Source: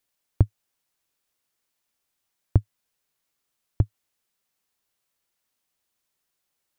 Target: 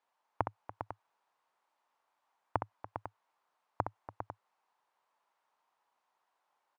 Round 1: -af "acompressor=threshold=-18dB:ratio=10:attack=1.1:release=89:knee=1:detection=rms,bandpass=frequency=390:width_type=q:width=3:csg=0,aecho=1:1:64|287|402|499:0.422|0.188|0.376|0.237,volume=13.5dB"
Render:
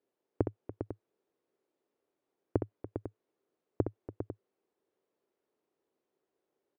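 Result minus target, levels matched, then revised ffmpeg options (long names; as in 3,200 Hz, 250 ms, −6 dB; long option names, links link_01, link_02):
1,000 Hz band −15.5 dB
-af "acompressor=threshold=-18dB:ratio=10:attack=1.1:release=89:knee=1:detection=rms,bandpass=frequency=920:width_type=q:width=3:csg=0,aecho=1:1:64|287|402|499:0.422|0.188|0.376|0.237,volume=13.5dB"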